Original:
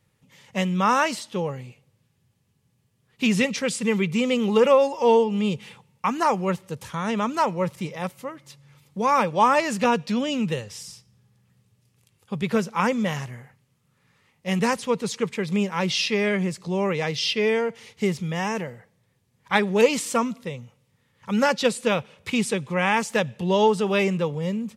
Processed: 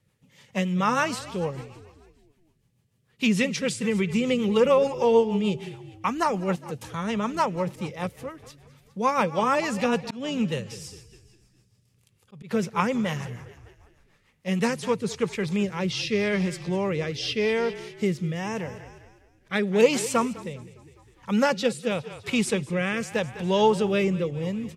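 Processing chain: frequency-shifting echo 0.203 s, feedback 52%, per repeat -34 Hz, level -16 dB; rotary speaker horn 6.7 Hz, later 0.85 Hz, at 14.32; 10.03–12.51 auto swell 0.22 s

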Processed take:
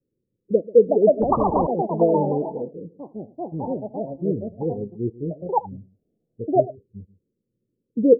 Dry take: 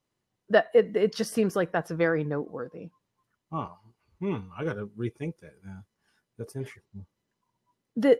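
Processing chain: steep low-pass 540 Hz 96 dB/oct; bell 410 Hz +4 dB 2.6 oct; echo 0.136 s -19 dB; echoes that change speed 0.508 s, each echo +5 st, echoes 2; 1.22–1.67 spectral compressor 10:1; gain +2.5 dB

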